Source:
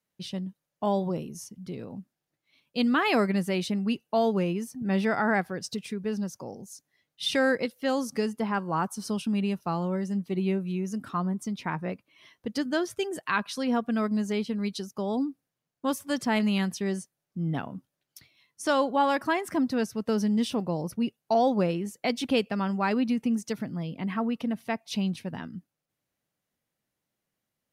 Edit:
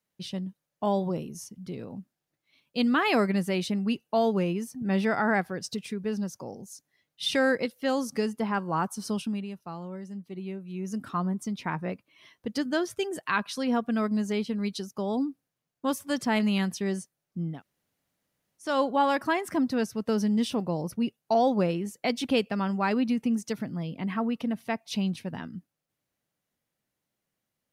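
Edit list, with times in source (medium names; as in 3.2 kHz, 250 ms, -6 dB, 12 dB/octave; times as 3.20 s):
9.19–10.94 s: dip -9.5 dB, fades 0.26 s
17.51–18.68 s: room tone, crossfade 0.24 s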